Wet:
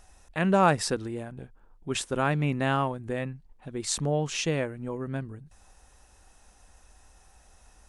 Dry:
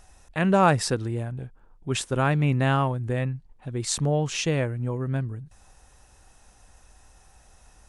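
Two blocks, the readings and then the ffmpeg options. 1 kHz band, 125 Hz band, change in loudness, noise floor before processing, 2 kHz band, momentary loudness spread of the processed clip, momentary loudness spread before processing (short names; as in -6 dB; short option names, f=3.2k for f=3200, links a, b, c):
-2.0 dB, -6.5 dB, -3.0 dB, -56 dBFS, -2.0 dB, 19 LU, 15 LU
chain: -af "equalizer=f=120:t=o:w=0.33:g=-11,volume=-2dB"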